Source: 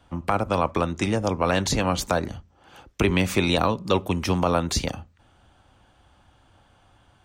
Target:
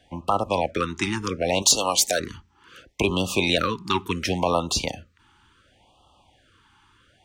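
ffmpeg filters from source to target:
-filter_complex "[0:a]asettb=1/sr,asplit=3[a][b][c];[a]atrim=end=1.624[d];[b]atrim=start=1.62:end=2.2,asetpts=PTS-STARTPTS,afade=t=in:d=0.004:c=qsin,afade=t=out:st=0.576:d=0.004:c=qsin,bass=f=250:g=-12,treble=f=4k:g=13[e];[c]atrim=start=2.196[f];[d][e]acrossfade=d=0.004:c1=hsin:c2=qsin[g];[g][f]acrossfade=d=0.004:c1=qsin:c2=hsin,asplit=2[h][i];[i]highpass=f=720:p=1,volume=8dB,asoftclip=type=tanh:threshold=-4.5dB[j];[h][j]amix=inputs=2:normalize=0,lowpass=f=6.4k:p=1,volume=-6dB,afftfilt=real='re*(1-between(b*sr/1024,550*pow(1900/550,0.5+0.5*sin(2*PI*0.7*pts/sr))/1.41,550*pow(1900/550,0.5+0.5*sin(2*PI*0.7*pts/sr))*1.41))':imag='im*(1-between(b*sr/1024,550*pow(1900/550,0.5+0.5*sin(2*PI*0.7*pts/sr))/1.41,550*pow(1900/550,0.5+0.5*sin(2*PI*0.7*pts/sr))*1.41))':win_size=1024:overlap=0.75"

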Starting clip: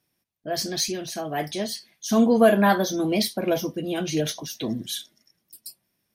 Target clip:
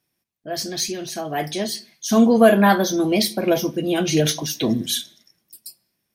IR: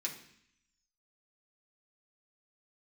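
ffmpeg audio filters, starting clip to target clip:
-filter_complex "[0:a]dynaudnorm=f=220:g=11:m=11.5dB,asplit=2[a][b];[1:a]atrim=start_sample=2205,afade=t=out:st=0.31:d=0.01,atrim=end_sample=14112[c];[b][c]afir=irnorm=-1:irlink=0,volume=-12.5dB[d];[a][d]amix=inputs=2:normalize=0,volume=-1.5dB"

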